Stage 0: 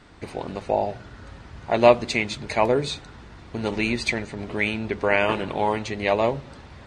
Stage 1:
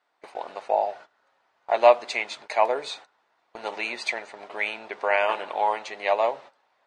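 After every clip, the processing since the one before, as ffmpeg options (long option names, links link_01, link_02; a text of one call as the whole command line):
ffmpeg -i in.wav -af "highpass=frequency=710:width_type=q:width=1.7,agate=range=-18dB:threshold=-39dB:ratio=16:detection=peak,highshelf=frequency=6300:gain=-5,volume=-3dB" out.wav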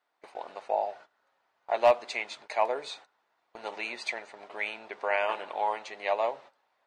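ffmpeg -i in.wav -af "asoftclip=type=hard:threshold=-7.5dB,volume=-5.5dB" out.wav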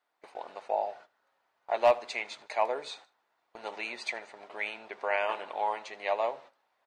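ffmpeg -i in.wav -af "aecho=1:1:77|154:0.0794|0.0278,volume=-1.5dB" out.wav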